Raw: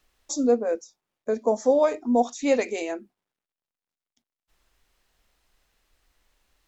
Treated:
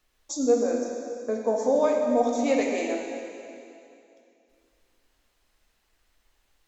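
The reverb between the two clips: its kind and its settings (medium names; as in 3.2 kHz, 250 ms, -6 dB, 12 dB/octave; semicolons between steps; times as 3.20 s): plate-style reverb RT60 2.6 s, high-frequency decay 1×, DRR 0 dB; trim -3.5 dB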